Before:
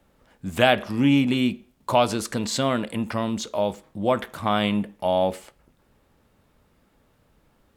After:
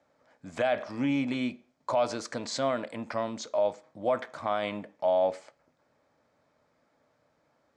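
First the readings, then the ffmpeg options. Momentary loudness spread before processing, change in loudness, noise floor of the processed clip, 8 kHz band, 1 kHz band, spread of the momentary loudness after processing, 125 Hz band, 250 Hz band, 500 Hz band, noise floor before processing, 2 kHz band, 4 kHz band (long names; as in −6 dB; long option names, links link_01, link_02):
8 LU, −7.0 dB, −72 dBFS, −9.0 dB, −7.0 dB, 8 LU, −14.0 dB, −10.0 dB, −4.0 dB, −64 dBFS, −9.0 dB, −11.5 dB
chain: -af "highpass=180,equalizer=frequency=200:width_type=q:width=4:gain=-10,equalizer=frequency=380:width_type=q:width=4:gain=-7,equalizer=frequency=620:width_type=q:width=4:gain=6,equalizer=frequency=3500:width_type=q:width=4:gain=-6,lowpass=frequency=6800:width=0.5412,lowpass=frequency=6800:width=1.3066,alimiter=limit=-13dB:level=0:latency=1:release=25,bandreject=frequency=2800:width=7.4,volume=-4.5dB"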